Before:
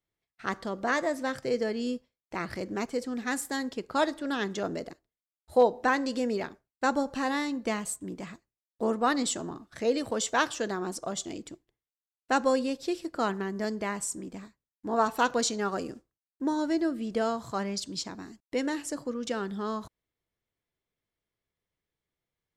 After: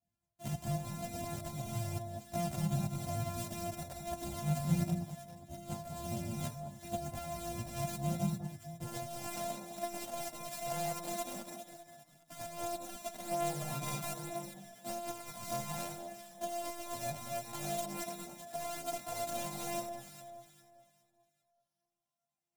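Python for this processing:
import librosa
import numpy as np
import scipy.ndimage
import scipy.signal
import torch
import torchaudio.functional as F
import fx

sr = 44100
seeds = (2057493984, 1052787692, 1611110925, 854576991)

y = np.r_[np.sort(x[:len(x) // 128 * 128].reshape(-1, 128), axis=1).ravel(), x[len(x) // 128 * 128:]]
y = fx.highpass(y, sr, hz=fx.steps((0.0, 100.0), (8.84, 370.0)), slope=12)
y = fx.over_compress(y, sr, threshold_db=-35.0, ratio=-1.0)
y = fx.curve_eq(y, sr, hz=(190.0, 370.0, 700.0, 1100.0, 4300.0, 7600.0), db=(0, -24, -5, -20, -15, -7))
y = fx.echo_alternate(y, sr, ms=202, hz=1200.0, feedback_pct=57, wet_db=-5.5)
y = fx.chorus_voices(y, sr, voices=6, hz=0.15, base_ms=16, depth_ms=4.7, mix_pct=65)
y = F.gain(torch.from_numpy(y), 9.0).numpy()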